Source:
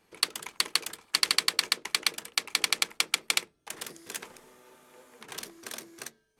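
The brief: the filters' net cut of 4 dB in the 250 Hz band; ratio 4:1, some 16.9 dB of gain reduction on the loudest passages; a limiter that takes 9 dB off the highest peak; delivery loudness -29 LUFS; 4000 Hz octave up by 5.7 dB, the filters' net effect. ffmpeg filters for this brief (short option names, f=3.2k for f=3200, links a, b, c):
-af "equalizer=f=250:t=o:g=-6,equalizer=f=4k:t=o:g=6.5,acompressor=threshold=-38dB:ratio=4,volume=14.5dB,alimiter=limit=-8.5dB:level=0:latency=1"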